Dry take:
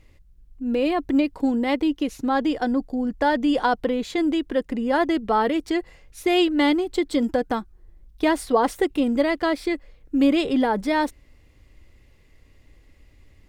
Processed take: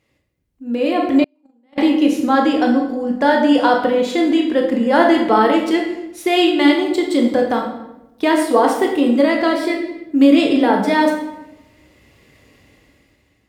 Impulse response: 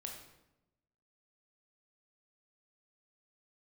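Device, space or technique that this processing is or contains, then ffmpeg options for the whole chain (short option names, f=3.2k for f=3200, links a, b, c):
far laptop microphone: -filter_complex "[1:a]atrim=start_sample=2205[a];[0:a][a]afir=irnorm=-1:irlink=0,highpass=150,dynaudnorm=f=210:g=9:m=15dB,asettb=1/sr,asplit=3[b][c][d];[b]atrim=end=1.244[e];[c]atrim=start=1.24:end=1.78,asetpts=PTS-STARTPTS,afade=t=in:d=0.004:c=qsin,afade=t=out:st=0.536:d=0.004:c=qsin,agate=range=-44dB:threshold=-6dB:ratio=16:detection=peak[f];[d]atrim=start=1.776[g];[e][f]acrossfade=d=0.004:c1=hsin:c2=qsin[h];[h][g]acrossfade=d=0.004:c1=qsin:c2=hsin"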